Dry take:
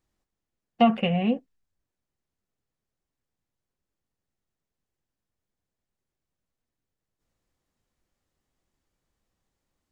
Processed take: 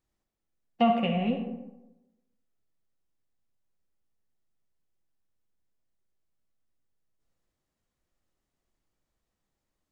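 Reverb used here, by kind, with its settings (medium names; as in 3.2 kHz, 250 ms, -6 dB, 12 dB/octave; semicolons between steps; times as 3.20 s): algorithmic reverb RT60 1 s, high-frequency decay 0.45×, pre-delay 15 ms, DRR 4 dB; trim -4.5 dB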